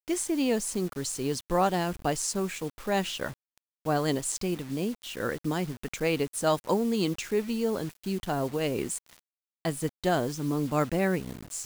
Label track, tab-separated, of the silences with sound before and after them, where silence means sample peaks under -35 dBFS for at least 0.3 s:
3.320000	3.860000	silence
8.980000	9.650000	silence